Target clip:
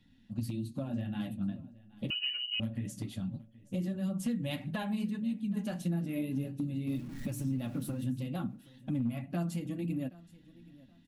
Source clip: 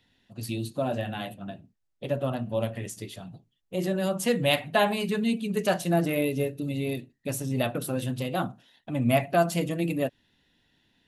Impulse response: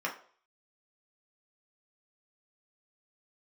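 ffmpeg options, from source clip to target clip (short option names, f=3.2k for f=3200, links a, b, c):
-filter_complex "[0:a]asettb=1/sr,asplit=3[a][b][c];[a]atrim=end=6.874[d];[b]atrim=start=6.87:end=8.04,asetpts=PTS-STARTPTS,afade=t=in:d=0.004:c=qsin,afade=t=out:st=1.166:d=0.004:c=qsin,aeval=exprs='val(0)+0.5*0.0119*sgn(val(0))':c=same[e];[c]atrim=start=8.036[f];[d][e]acrossfade=d=0.004:c1=hsin:c2=qsin[g];[g][f]acrossfade=d=0.004:c1=qsin:c2=hsin,lowshelf=f=320:t=q:w=1.5:g=11.5,aecho=1:1:3.6:0.35,acompressor=threshold=-27dB:ratio=6,asoftclip=type=hard:threshold=-21dB,flanger=delay=5.4:depth=4.6:regen=-38:speed=1.7:shape=triangular,aecho=1:1:774|1548:0.0891|0.0241,asettb=1/sr,asplit=3[h][i][j];[h]atrim=end=2.104[k];[i]atrim=start=2.1:end=2.6,asetpts=PTS-STARTPTS,afade=t=in:d=0.004:c=qsin,afade=t=out:st=0.496:d=0.004:c=qsin,lowpass=f=2.6k:t=q:w=0.5098,lowpass=f=2.6k:t=q:w=0.6013,lowpass=f=2.6k:t=q:w=0.9,lowpass=f=2.6k:t=q:w=2.563,afreqshift=-3100[l];[j]atrim=start=2.596[m];[k][l]acrossfade=d=0.004:c1=hsin:c2=qsin[n];[n][m]acrossfade=d=0.004:c1=qsin:c2=hsin,volume=-1.5dB"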